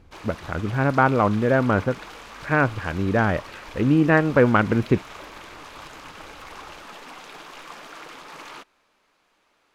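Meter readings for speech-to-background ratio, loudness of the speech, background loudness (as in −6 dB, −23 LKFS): 19.0 dB, −21.5 LKFS, −40.5 LKFS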